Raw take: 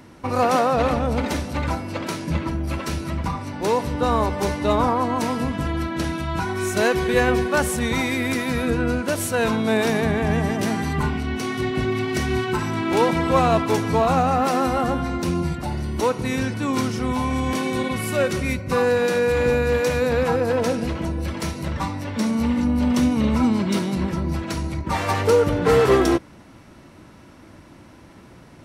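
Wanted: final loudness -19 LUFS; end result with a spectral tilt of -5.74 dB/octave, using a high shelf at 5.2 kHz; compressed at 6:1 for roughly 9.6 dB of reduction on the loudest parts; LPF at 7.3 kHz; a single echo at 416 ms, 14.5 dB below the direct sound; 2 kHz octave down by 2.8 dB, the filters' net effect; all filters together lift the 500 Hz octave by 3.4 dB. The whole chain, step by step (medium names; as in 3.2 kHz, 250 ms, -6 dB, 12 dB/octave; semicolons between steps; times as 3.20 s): low-pass 7.3 kHz; peaking EQ 500 Hz +4 dB; peaking EQ 2 kHz -4.5 dB; treble shelf 5.2 kHz +4 dB; compression 6:1, threshold -20 dBFS; delay 416 ms -14.5 dB; trim +5.5 dB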